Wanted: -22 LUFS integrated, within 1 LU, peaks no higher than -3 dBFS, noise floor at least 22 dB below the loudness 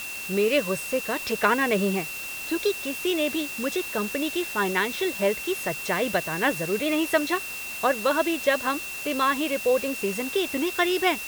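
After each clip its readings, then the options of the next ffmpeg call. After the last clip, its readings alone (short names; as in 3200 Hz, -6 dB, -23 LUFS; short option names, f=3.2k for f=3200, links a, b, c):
steady tone 2700 Hz; tone level -34 dBFS; noise floor -35 dBFS; noise floor target -47 dBFS; loudness -25.0 LUFS; peak -6.0 dBFS; loudness target -22.0 LUFS
-> -af "bandreject=f=2.7k:w=30"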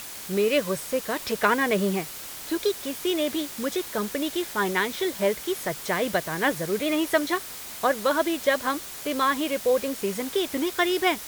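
steady tone none; noise floor -39 dBFS; noise floor target -48 dBFS
-> -af "afftdn=nr=9:nf=-39"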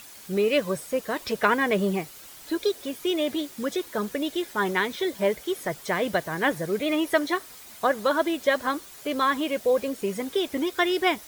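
noise floor -46 dBFS; noise floor target -48 dBFS
-> -af "afftdn=nr=6:nf=-46"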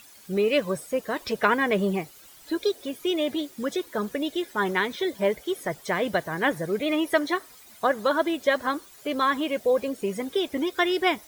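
noise floor -50 dBFS; loudness -26.5 LUFS; peak -6.5 dBFS; loudness target -22.0 LUFS
-> -af "volume=4.5dB,alimiter=limit=-3dB:level=0:latency=1"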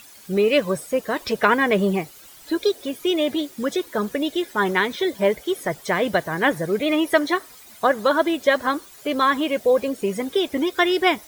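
loudness -22.0 LUFS; peak -3.0 dBFS; noise floor -46 dBFS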